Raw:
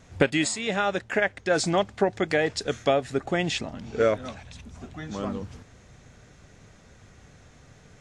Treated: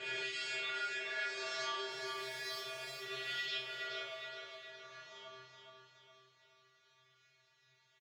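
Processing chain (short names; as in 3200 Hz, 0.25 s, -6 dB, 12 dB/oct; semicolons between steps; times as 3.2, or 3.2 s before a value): spectral swells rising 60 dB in 2.45 s; LPF 4000 Hz 24 dB/oct; differentiator; 1.89–3.02 hard clip -38 dBFS, distortion -12 dB; resonator 130 Hz, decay 0.47 s, harmonics odd, mix 100%; feedback echo 0.418 s, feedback 46%, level -5.5 dB; on a send at -16.5 dB: reverb RT60 5.4 s, pre-delay 33 ms; on the sum: gain +10 dB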